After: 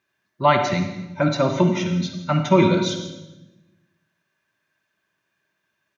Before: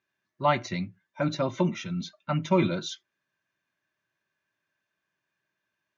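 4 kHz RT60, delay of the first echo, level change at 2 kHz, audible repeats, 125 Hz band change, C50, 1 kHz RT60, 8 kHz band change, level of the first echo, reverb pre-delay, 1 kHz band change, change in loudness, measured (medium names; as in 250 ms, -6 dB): 0.90 s, 165 ms, +8.0 dB, 1, +8.0 dB, 6.0 dB, 0.90 s, no reading, -16.5 dB, 40 ms, +8.0 dB, +8.0 dB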